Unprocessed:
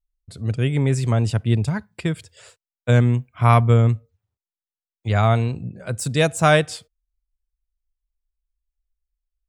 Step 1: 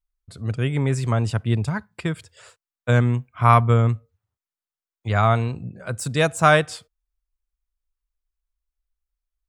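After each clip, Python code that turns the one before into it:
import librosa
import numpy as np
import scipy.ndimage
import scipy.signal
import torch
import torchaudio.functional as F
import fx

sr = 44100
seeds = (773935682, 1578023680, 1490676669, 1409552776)

y = fx.peak_eq(x, sr, hz=1200.0, db=6.5, octaves=1.1)
y = y * librosa.db_to_amplitude(-2.5)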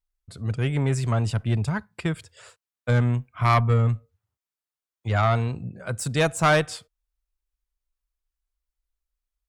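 y = fx.tube_stage(x, sr, drive_db=12.0, bias=0.25)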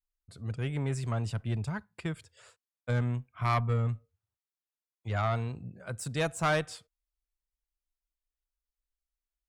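y = fx.vibrato(x, sr, rate_hz=0.36, depth_cents=12.0)
y = y * librosa.db_to_amplitude(-8.5)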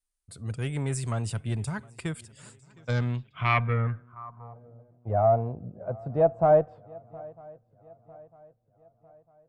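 y = fx.echo_swing(x, sr, ms=951, ratio=3, feedback_pct=43, wet_db=-23.5)
y = fx.filter_sweep_lowpass(y, sr, from_hz=9400.0, to_hz=670.0, start_s=2.46, end_s=4.67, q=3.9)
y = y * librosa.db_to_amplitude(2.0)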